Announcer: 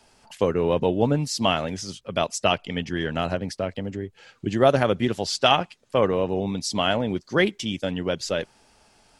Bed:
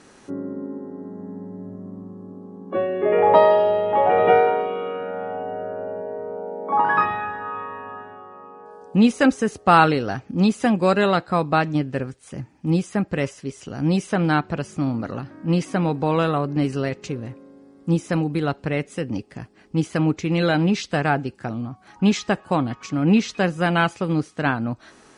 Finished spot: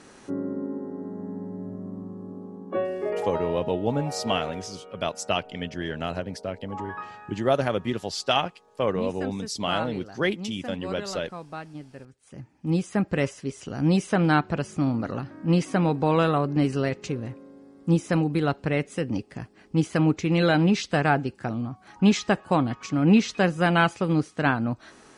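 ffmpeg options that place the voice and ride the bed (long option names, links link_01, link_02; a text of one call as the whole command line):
ffmpeg -i stem1.wav -i stem2.wav -filter_complex "[0:a]adelay=2850,volume=-4.5dB[link_01];[1:a]volume=17dB,afade=type=out:start_time=2.42:duration=0.91:silence=0.125893,afade=type=in:start_time=12.08:duration=1:silence=0.141254[link_02];[link_01][link_02]amix=inputs=2:normalize=0" out.wav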